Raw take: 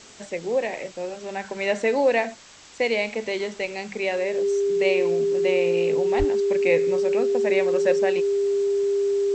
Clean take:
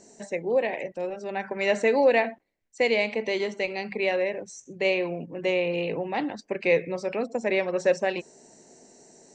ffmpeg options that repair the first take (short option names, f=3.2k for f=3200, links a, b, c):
-filter_complex "[0:a]bandreject=f=400:w=30,asplit=3[a][b][c];[a]afade=t=out:st=6.18:d=0.02[d];[b]highpass=f=140:w=0.5412,highpass=f=140:w=1.3066,afade=t=in:st=6.18:d=0.02,afade=t=out:st=6.3:d=0.02[e];[c]afade=t=in:st=6.3:d=0.02[f];[d][e][f]amix=inputs=3:normalize=0,afftdn=nr=14:nf=-40"